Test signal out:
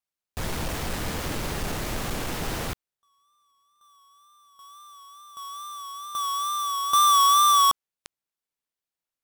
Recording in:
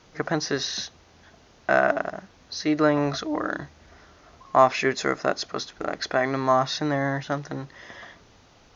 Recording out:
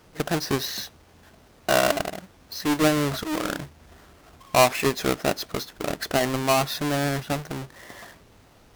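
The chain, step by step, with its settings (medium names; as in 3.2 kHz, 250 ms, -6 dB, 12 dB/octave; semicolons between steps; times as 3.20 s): square wave that keeps the level; wow and flutter 53 cents; trim -4 dB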